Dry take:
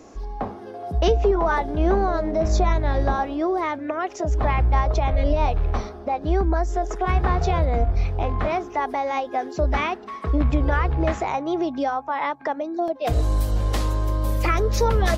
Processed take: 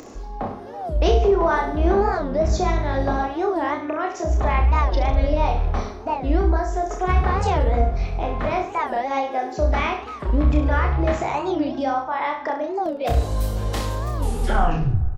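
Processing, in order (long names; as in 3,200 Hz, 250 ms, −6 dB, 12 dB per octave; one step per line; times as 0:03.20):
turntable brake at the end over 0.99 s
upward compression, threshold −35 dBFS
reverse bouncing-ball delay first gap 30 ms, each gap 1.1×, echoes 5
on a send at −21 dB: convolution reverb RT60 3.1 s, pre-delay 4 ms
on the sum: wow of a warped record 45 rpm, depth 250 cents
level −1 dB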